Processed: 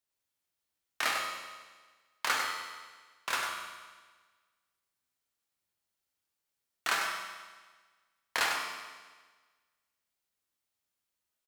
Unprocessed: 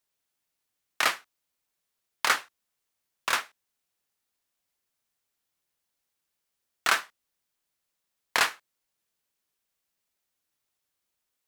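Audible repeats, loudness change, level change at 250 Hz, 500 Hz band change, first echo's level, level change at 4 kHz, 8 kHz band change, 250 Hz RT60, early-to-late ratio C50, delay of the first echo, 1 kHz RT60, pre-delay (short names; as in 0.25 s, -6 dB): 1, -6.0 dB, -3.5 dB, -4.0 dB, -6.5 dB, -4.0 dB, -4.0 dB, 1.4 s, 1.0 dB, 98 ms, 1.4 s, 11 ms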